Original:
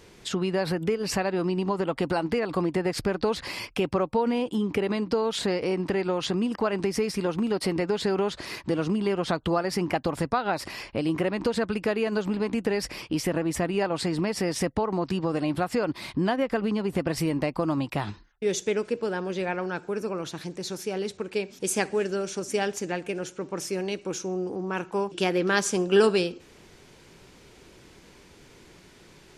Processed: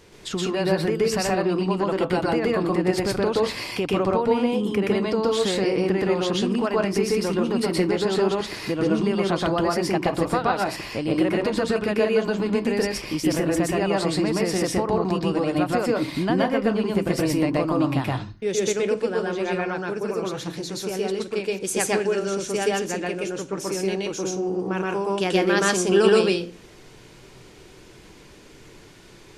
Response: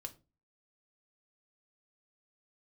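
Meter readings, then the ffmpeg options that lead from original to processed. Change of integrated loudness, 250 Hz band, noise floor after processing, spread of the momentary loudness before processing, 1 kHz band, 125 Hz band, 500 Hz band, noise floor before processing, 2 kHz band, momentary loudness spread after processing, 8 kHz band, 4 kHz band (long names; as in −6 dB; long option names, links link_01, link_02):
+4.5 dB, +4.5 dB, −48 dBFS, 6 LU, +4.0 dB, +3.5 dB, +4.5 dB, −53 dBFS, +4.0 dB, 6 LU, +4.0 dB, +4.0 dB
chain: -filter_complex "[0:a]asplit=2[link_01][link_02];[1:a]atrim=start_sample=2205,adelay=123[link_03];[link_02][link_03]afir=irnorm=-1:irlink=0,volume=6dB[link_04];[link_01][link_04]amix=inputs=2:normalize=0"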